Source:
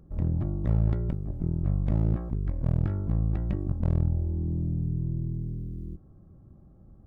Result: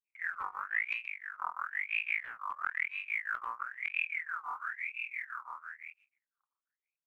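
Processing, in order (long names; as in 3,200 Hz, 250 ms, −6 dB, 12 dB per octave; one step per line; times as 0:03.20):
mu-law and A-law mismatch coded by A
noise gate −53 dBFS, range −26 dB
granular cloud 202 ms, grains 5.9 per second
ring modulator whose carrier an LFO sweeps 1,800 Hz, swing 40%, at 1 Hz
level −4 dB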